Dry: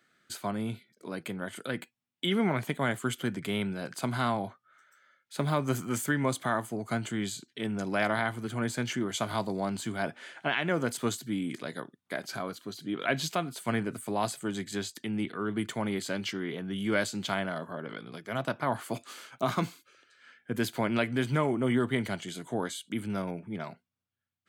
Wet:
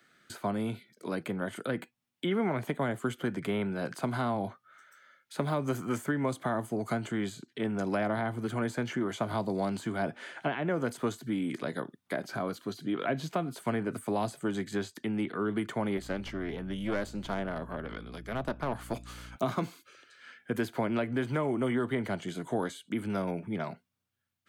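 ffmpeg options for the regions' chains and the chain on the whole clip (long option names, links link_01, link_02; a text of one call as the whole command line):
ffmpeg -i in.wav -filter_complex "[0:a]asettb=1/sr,asplit=3[link_01][link_02][link_03];[link_01]atrim=end=15.974[link_04];[link_02]atrim=start=15.97:end=19.36,asetpts=PTS-STARTPTS,afade=type=in:duration=0.004:curve=qsin,afade=type=out:start_time=3.386:duration=0.004:curve=qsin,aeval=exprs='(tanh(14.1*val(0)+0.8)-tanh(0.8))/14.1':channel_layout=same,aeval=exprs='val(0)+0.00282*(sin(2*PI*60*n/s)+sin(2*PI*2*60*n/s)/2+sin(2*PI*3*60*n/s)/3+sin(2*PI*4*60*n/s)/4+sin(2*PI*5*60*n/s)/5)':channel_layout=same[link_05];[link_03]atrim=start=19.356[link_06];[link_04][link_05]acrossfade=duration=0.004:curve1=hsin:curve2=qsin[link_07];[link_07][link_06]acrossfade=duration=0.004:curve1=qsin:curve2=hsin,bandreject=frequency=7600:width=29,acrossover=split=310|710|1800[link_08][link_09][link_10][link_11];[link_08]acompressor=threshold=-39dB:ratio=4[link_12];[link_09]acompressor=threshold=-36dB:ratio=4[link_13];[link_10]acompressor=threshold=-43dB:ratio=4[link_14];[link_11]acompressor=threshold=-53dB:ratio=4[link_15];[link_12][link_13][link_14][link_15]amix=inputs=4:normalize=0,volume=4.5dB" out.wav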